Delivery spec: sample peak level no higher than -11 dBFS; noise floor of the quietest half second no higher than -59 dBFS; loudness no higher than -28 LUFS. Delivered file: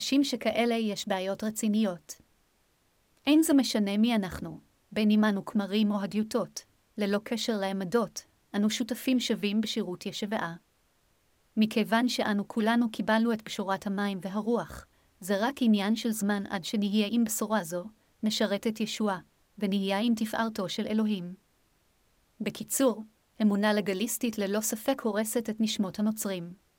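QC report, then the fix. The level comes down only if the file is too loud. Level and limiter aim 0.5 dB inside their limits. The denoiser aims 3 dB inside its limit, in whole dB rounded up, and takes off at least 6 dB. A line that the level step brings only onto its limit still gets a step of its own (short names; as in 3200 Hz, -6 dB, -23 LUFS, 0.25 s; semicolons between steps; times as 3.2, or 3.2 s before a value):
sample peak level -12.5 dBFS: OK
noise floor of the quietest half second -69 dBFS: OK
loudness -29.0 LUFS: OK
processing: none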